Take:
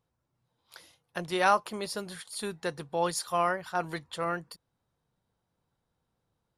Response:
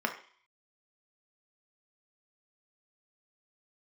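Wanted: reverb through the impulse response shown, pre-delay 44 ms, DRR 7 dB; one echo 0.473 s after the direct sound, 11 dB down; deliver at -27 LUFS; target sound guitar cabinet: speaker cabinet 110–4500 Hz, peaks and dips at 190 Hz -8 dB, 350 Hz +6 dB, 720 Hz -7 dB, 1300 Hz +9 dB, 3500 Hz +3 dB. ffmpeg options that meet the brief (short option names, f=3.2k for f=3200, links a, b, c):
-filter_complex "[0:a]aecho=1:1:473:0.282,asplit=2[a][b];[1:a]atrim=start_sample=2205,adelay=44[c];[b][c]afir=irnorm=-1:irlink=0,volume=-15dB[d];[a][d]amix=inputs=2:normalize=0,highpass=110,equalizer=f=190:t=q:w=4:g=-8,equalizer=f=350:t=q:w=4:g=6,equalizer=f=720:t=q:w=4:g=-7,equalizer=f=1.3k:t=q:w=4:g=9,equalizer=f=3.5k:t=q:w=4:g=3,lowpass=f=4.5k:w=0.5412,lowpass=f=4.5k:w=1.3066,volume=0.5dB"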